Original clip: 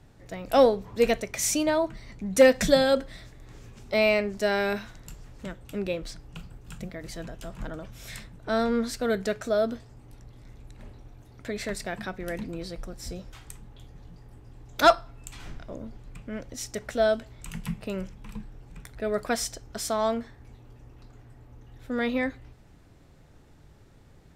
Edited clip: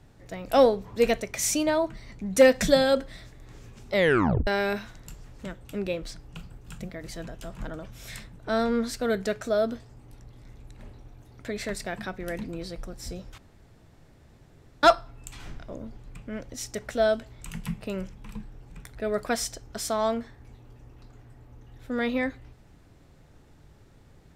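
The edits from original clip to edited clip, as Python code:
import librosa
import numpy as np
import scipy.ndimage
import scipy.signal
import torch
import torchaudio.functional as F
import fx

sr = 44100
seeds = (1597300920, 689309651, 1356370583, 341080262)

y = fx.edit(x, sr, fx.tape_stop(start_s=3.93, length_s=0.54),
    fx.room_tone_fill(start_s=13.38, length_s=1.45), tone=tone)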